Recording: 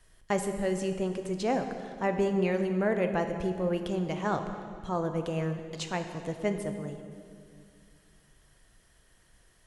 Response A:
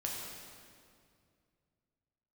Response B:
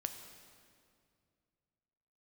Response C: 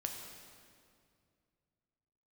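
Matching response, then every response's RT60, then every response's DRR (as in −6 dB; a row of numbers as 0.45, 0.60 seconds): B; 2.3, 2.3, 2.3 seconds; −3.0, 6.0, 2.0 decibels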